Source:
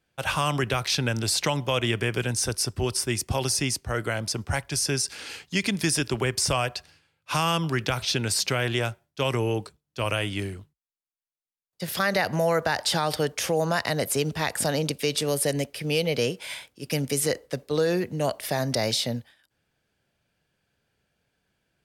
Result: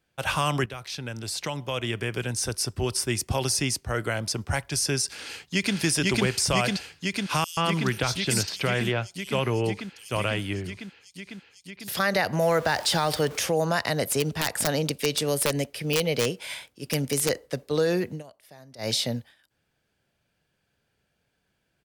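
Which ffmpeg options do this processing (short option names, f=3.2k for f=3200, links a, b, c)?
-filter_complex "[0:a]asplit=2[a][b];[b]afade=t=in:st=5.15:d=0.01,afade=t=out:st=5.76:d=0.01,aecho=0:1:500|1000|1500|2000|2500|3000|3500|4000|4500|5000|5500|6000:0.944061|0.802452|0.682084|0.579771|0.492806|0.418885|0.356052|0.302644|0.257248|0.21866|0.185861|0.157982[c];[a][c]amix=inputs=2:normalize=0,asettb=1/sr,asplit=3[d][e][f];[d]atrim=end=7.444[g];[e]atrim=start=7.44:end=11.88,asetpts=PTS-STARTPTS,afade=t=in:d=0.004:c=qsin,afade=t=out:st=4.436:d=0.004:c=qsin,acrossover=split=4200[h][i];[h]adelay=130[j];[j][i]amix=inputs=2:normalize=0,atrim=end_sample=195804[k];[f]atrim=start=11.876[l];[g][k]acrossfade=d=0.004:c1=hsin:c2=qsin[m];[m][l]acrossfade=d=0.004:c1=qsin:c2=hsin,asettb=1/sr,asplit=3[n][o][p];[n]atrim=end=12.424[q];[o]atrim=start=12.42:end=13.44,asetpts=PTS-STARTPTS,afade=t=in:d=0.004:c=qsin,afade=t=out:st=1.016:d=0.004:c=qsin,aeval=exprs='val(0)+0.5*0.0158*sgn(val(0))':c=same[r];[p]atrim=start=13.436[s];[q][r]acrossfade=d=0.004:c1=hsin:c2=qsin[t];[t][s]acrossfade=d=0.004:c1=qsin:c2=hsin,asettb=1/sr,asplit=3[u][v][w];[u]atrim=end=14.054[x];[v]atrim=start=14.05:end=17.3,asetpts=PTS-STARTPTS,afade=t=in:d=0.004:c=qsin,afade=t=out:st=3.246:d=0.004:c=qsin,aeval=exprs='(mod(5.31*val(0)+1,2)-1)/5.31':c=same[y];[w]atrim=start=17.296[z];[x][y]acrossfade=d=0.004:c1=hsin:c2=qsin[aa];[aa][z]acrossfade=d=0.004:c1=qsin:c2=hsin,asplit=4[ab][ac][ad][ae];[ab]atrim=end=0.66,asetpts=PTS-STARTPTS,afade=t=out:st=0.656:d=0.004:c=hsin:silence=0.223872[af];[ac]atrim=start=0.66:end=18.23,asetpts=PTS-STARTPTS,afade=t=in:d=2.43:silence=0.223872,afade=t=out:st=17.45:d=0.12:silence=0.0749894[ag];[ad]atrim=start=18.23:end=18.78,asetpts=PTS-STARTPTS,volume=-22.5dB[ah];[ae]atrim=start=18.78,asetpts=PTS-STARTPTS,afade=t=in:d=0.12:silence=0.0749894[ai];[af][ag][ah][ai]concat=n=4:v=0:a=1"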